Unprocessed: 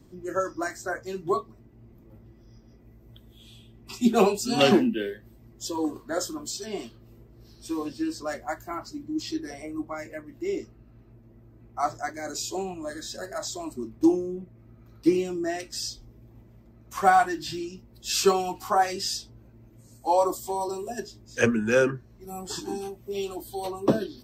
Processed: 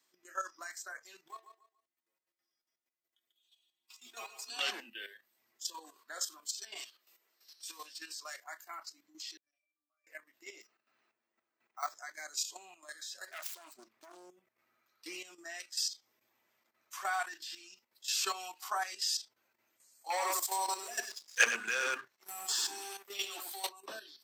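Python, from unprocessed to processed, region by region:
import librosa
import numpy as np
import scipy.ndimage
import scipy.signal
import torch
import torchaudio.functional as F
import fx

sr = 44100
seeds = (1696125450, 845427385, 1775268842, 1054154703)

y = fx.chain(x, sr, fx.law_mismatch(coded='A'),
    fx.stiff_resonator(f0_hz=81.0, decay_s=0.29, stiffness=0.008),
    fx.echo_feedback(ms=142, feedback_pct=29, wet_db=-9.0), at=(1.28, 4.5))
y = fx.chain(y, sr, fx.highpass(hz=290.0, slope=12),
    fx.high_shelf(hz=2400.0, db=6.5), at=(6.76, 8.44))
y = fx.chain(y, sr, fx.differentiator(),
    fx.octave_resonator(note='D', decay_s=0.32),
    fx.sustainer(db_per_s=43.0), at=(9.37, 10.07))
y = fx.chain(y, sr, fx.highpass(hz=140.0, slope=12),
    fx.resample_bad(factor=2, down='filtered', up='hold'), at=(10.61, 11.95))
y = fx.chain(y, sr, fx.self_delay(depth_ms=0.77),
    fx.peak_eq(hz=9900.0, db=-4.0, octaves=1.3),
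    fx.over_compress(threshold_db=-26.0, ratio=-0.5), at=(13.27, 14.3))
y = fx.chain(y, sr, fx.leveller(passes=2),
    fx.echo_single(ms=94, db=-4.0), at=(20.1, 23.69))
y = scipy.signal.sosfilt(scipy.signal.butter(2, 1500.0, 'highpass', fs=sr, output='sos'), y)
y = fx.level_steps(y, sr, step_db=11)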